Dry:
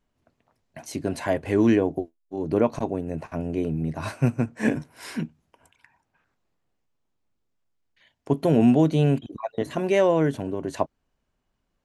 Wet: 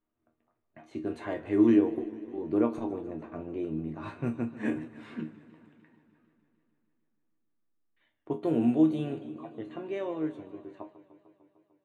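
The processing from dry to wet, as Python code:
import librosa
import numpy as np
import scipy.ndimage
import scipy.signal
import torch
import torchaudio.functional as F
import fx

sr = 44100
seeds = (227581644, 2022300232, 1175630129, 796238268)

y = fx.fade_out_tail(x, sr, length_s=3.84)
y = fx.low_shelf(y, sr, hz=170.0, db=-4.5)
y = fx.resonator_bank(y, sr, root=39, chord='sus4', decay_s=0.22)
y = fx.small_body(y, sr, hz=(330.0, 1200.0, 3600.0), ring_ms=35, db=10)
y = fx.env_lowpass(y, sr, base_hz=2600.0, full_db=-23.0)
y = fx.peak_eq(y, sr, hz=5300.0, db=-12.5, octaves=0.43)
y = fx.echo_warbled(y, sr, ms=150, feedback_pct=73, rate_hz=2.8, cents=112, wet_db=-17)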